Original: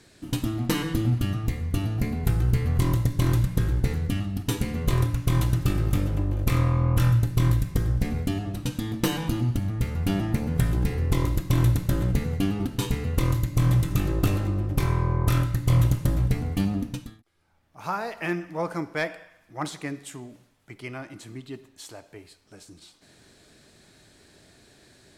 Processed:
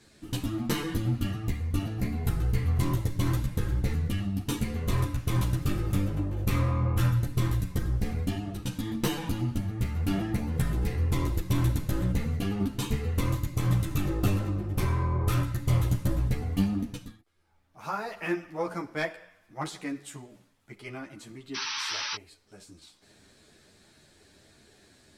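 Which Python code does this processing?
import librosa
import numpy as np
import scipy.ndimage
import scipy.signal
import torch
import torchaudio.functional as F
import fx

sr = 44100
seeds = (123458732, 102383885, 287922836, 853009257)

y = fx.spec_paint(x, sr, seeds[0], shape='noise', start_s=21.54, length_s=0.62, low_hz=820.0, high_hz=6100.0, level_db=-30.0)
y = fx.ensemble(y, sr)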